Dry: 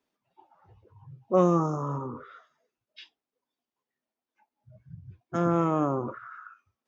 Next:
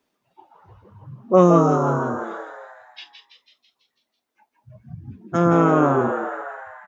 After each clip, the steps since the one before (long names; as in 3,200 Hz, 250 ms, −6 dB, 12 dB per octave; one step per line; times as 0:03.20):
echo with shifted repeats 165 ms, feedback 57%, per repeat +99 Hz, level −7 dB
level +8 dB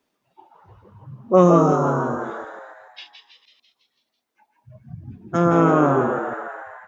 delay that plays each chunk backwards 144 ms, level −12 dB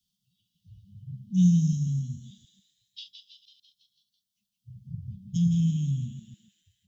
Chebyshev band-stop filter 200–3,100 Hz, order 5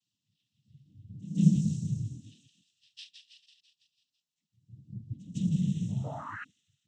sound drawn into the spectrogram rise, 0:06.03–0:06.44, 560–1,800 Hz −37 dBFS
cochlear-implant simulation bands 12
backwards echo 155 ms −19 dB
level −4 dB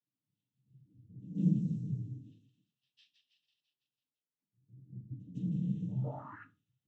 resonant band-pass 350 Hz, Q 0.81
convolution reverb RT60 0.30 s, pre-delay 3 ms, DRR 6.5 dB
level −1.5 dB